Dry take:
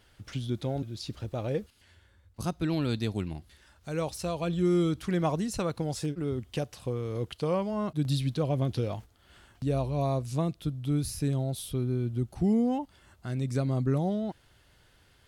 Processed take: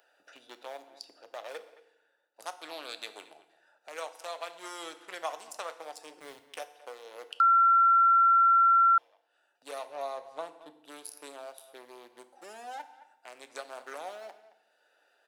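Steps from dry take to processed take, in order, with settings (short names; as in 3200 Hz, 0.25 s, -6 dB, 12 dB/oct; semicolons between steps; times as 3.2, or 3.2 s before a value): Wiener smoothing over 41 samples; HPF 680 Hz 24 dB/oct; high shelf 5500 Hz +8.5 dB; 6.19–6.76 sample gate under -52 dBFS; 9.89–10.7 tilt -3 dB/oct; 12.29–12.8 envelope flanger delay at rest 3.9 ms, full sweep at -22 dBFS; speakerphone echo 0.22 s, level -19 dB; FDN reverb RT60 0.72 s, low-frequency decay 1.35×, high-frequency decay 0.95×, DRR 9.5 dB; 7.4–8.98 bleep 1360 Hz -12 dBFS; three-band squash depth 40%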